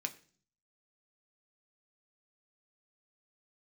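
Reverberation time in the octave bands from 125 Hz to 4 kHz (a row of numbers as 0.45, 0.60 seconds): 0.80, 0.70, 0.50, 0.40, 0.40, 0.50 seconds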